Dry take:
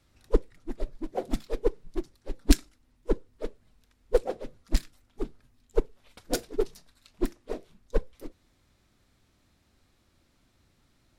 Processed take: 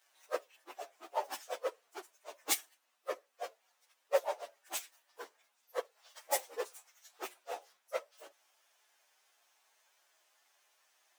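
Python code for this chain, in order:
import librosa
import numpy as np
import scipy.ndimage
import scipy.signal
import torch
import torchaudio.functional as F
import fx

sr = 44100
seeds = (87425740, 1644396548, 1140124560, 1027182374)

y = fx.partial_stretch(x, sr, pct=116)
y = scipy.signal.sosfilt(scipy.signal.butter(4, 660.0, 'highpass', fs=sr, output='sos'), y)
y = F.gain(torch.from_numpy(y), 5.5).numpy()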